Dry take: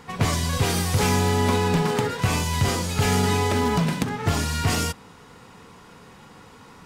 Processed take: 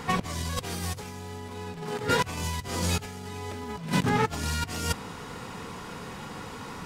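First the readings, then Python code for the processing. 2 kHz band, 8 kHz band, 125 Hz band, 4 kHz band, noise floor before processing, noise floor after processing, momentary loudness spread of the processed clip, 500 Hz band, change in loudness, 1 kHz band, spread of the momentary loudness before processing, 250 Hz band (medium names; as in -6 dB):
-5.0 dB, -7.0 dB, -9.5 dB, -6.5 dB, -48 dBFS, -41 dBFS, 13 LU, -8.0 dB, -8.5 dB, -5.5 dB, 4 LU, -7.5 dB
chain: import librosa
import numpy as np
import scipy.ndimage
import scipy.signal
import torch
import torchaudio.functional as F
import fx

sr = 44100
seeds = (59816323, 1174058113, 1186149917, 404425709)

y = fx.over_compress(x, sr, threshold_db=-29.0, ratio=-0.5)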